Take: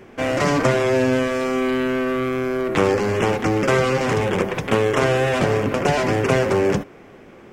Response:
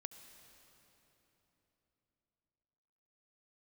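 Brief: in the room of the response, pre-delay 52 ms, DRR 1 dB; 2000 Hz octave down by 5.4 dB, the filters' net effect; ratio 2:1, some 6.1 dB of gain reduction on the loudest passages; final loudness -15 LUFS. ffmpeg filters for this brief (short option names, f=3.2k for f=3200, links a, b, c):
-filter_complex "[0:a]equalizer=f=2k:t=o:g=-7,acompressor=threshold=-25dB:ratio=2,asplit=2[a][b];[1:a]atrim=start_sample=2205,adelay=52[c];[b][c]afir=irnorm=-1:irlink=0,volume=3.5dB[d];[a][d]amix=inputs=2:normalize=0,volume=8dB"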